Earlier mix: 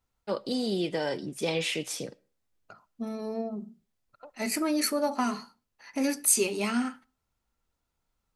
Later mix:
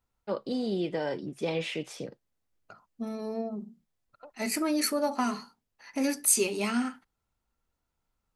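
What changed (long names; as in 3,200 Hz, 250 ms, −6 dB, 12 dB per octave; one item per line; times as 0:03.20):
first voice: add low-pass filter 2,100 Hz 6 dB per octave
reverb: off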